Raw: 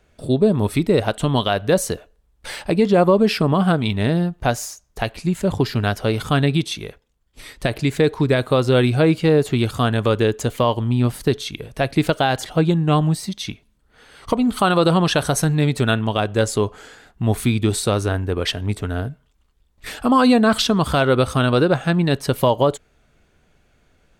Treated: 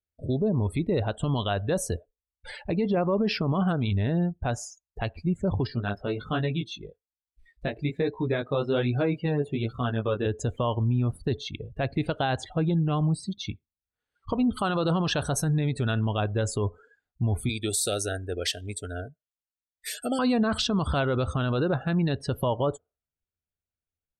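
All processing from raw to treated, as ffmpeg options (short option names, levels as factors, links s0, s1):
-filter_complex "[0:a]asettb=1/sr,asplit=3[s0][s1][s2];[s0]atrim=end=5.674[s3];[s1]atrim=start=5.67:end=10.26,asetpts=PTS-STARTPTS,afade=t=in:d=0.004:c=qsin,afade=t=out:st=4.586:d=0.004:c=qsin,equalizer=f=96:w=3.1:g=-12.5,flanger=delay=16:depth=5.1:speed=1.2[s4];[s2]atrim=start=10.256[s5];[s3][s4]acrossfade=d=0.004:c1=hsin:c2=qsin[s6];[s6][s5]acrossfade=d=0.004:c1=qsin:c2=hsin,asettb=1/sr,asplit=3[s7][s8][s9];[s7]atrim=end=17.494[s10];[s8]atrim=start=17.49:end=20.19,asetpts=PTS-STARTPTS,afade=t=in:d=0.004:c=qsin,afade=t=out:st=2.696:d=0.004:c=qsin,asuperstop=centerf=1000:order=8:qfactor=1.8,bass=f=250:g=-15,treble=f=4000:g=13[s11];[s9]atrim=start=20.186[s12];[s10][s11]acrossfade=d=0.004:c1=hsin:c2=qsin[s13];[s13][s12]acrossfade=d=0.004:c1=qsin:c2=hsin,afftdn=nr=34:nf=-32,equalizer=f=84:t=o:w=0.73:g=10.5,alimiter=limit=0.282:level=0:latency=1:release=26,volume=0.501"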